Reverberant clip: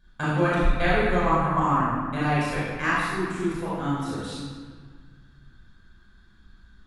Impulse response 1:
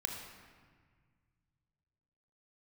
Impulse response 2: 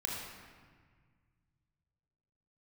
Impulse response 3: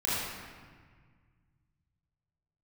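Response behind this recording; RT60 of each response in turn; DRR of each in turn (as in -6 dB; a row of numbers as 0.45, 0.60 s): 3; 1.7, 1.7, 1.6 s; 2.0, -2.5, -9.5 dB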